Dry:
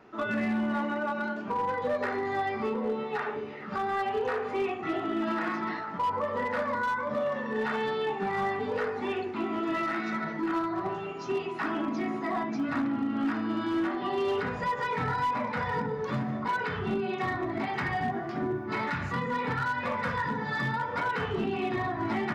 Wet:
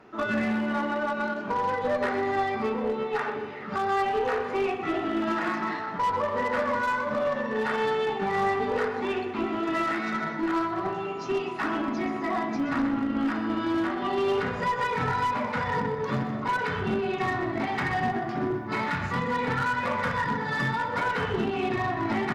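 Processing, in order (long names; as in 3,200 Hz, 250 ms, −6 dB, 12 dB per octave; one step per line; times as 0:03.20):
repeating echo 125 ms, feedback 54%, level −11 dB
harmonic generator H 2 −16 dB, 8 −32 dB, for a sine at −20 dBFS
level +2.5 dB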